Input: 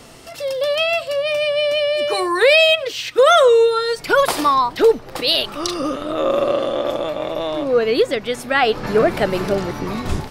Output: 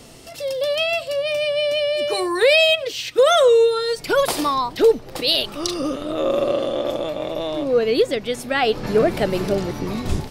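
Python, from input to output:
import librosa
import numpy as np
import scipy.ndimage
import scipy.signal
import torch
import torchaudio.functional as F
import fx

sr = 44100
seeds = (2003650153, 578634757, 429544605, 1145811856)

y = fx.peak_eq(x, sr, hz=1300.0, db=-6.5, octaves=1.7)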